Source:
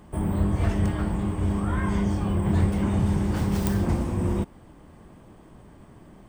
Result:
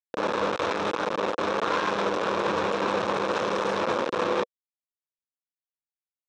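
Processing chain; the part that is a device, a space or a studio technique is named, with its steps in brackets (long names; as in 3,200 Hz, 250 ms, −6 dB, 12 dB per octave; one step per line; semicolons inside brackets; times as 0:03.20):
hand-held game console (bit reduction 4 bits; loudspeaker in its box 470–4,700 Hz, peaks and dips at 500 Hz +8 dB, 720 Hz −6 dB, 1,100 Hz +3 dB, 2,000 Hz −8 dB, 3,000 Hz −6 dB, 4,600 Hz −9 dB)
level +3 dB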